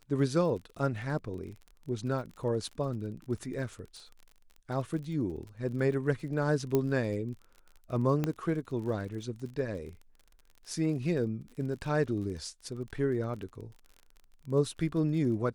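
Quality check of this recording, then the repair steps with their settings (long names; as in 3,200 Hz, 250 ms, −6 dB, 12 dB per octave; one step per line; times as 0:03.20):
surface crackle 35 per second −41 dBFS
0:06.75: click −15 dBFS
0:08.24: click −17 dBFS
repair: click removal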